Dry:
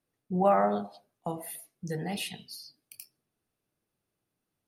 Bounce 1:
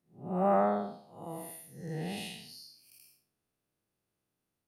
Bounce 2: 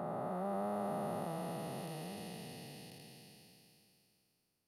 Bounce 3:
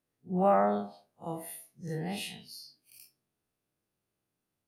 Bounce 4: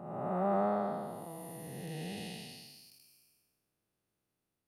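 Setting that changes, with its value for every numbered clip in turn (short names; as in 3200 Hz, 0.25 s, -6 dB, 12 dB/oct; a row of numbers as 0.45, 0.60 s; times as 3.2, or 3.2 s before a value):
time blur, width: 223, 1730, 84, 582 ms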